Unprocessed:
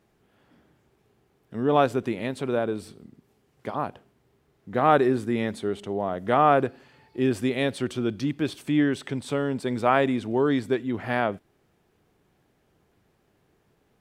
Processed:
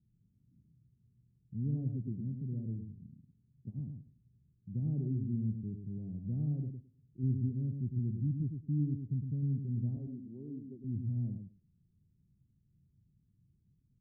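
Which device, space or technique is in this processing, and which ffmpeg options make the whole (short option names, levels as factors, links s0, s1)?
the neighbour's flat through the wall: -filter_complex "[0:a]asettb=1/sr,asplit=3[s0][s1][s2];[s0]atrim=end=6.514[s3];[s1]atrim=start=6.51:end=7.23,asetpts=PTS-STARTPTS,afade=t=in:d=0.004:c=qsin,afade=t=out:st=0.716:d=0.004:c=qsin,lowshelf=f=260:g=-5[s4];[s2]atrim=start=7.226[s5];[s3][s4]acrossfade=d=0.004:c1=hsin:c2=qsin[s6];[s6][s5]acrossfade=d=0.004:c1=qsin:c2=hsin,asettb=1/sr,asplit=3[s7][s8][s9];[s7]atrim=end=9.964[s10];[s8]atrim=start=9.96:end=10.84,asetpts=PTS-STARTPTS,afade=t=in:d=0.004:c=qsin,afade=t=out:st=0.876:d=0.004:c=qsin,highpass=330[s11];[s9]atrim=start=10.836[s12];[s10][s11]acrossfade=d=0.004:c1=hsin:c2=qsin[s13];[s13][s12]acrossfade=d=0.004:c1=qsin:c2=hsin,lowpass=f=190:w=0.5412,lowpass=f=190:w=1.3066,equalizer=f=120:t=o:w=0.96:g=4.5,aecho=1:1:107|214|321:0.501|0.0752|0.0113,volume=0.708"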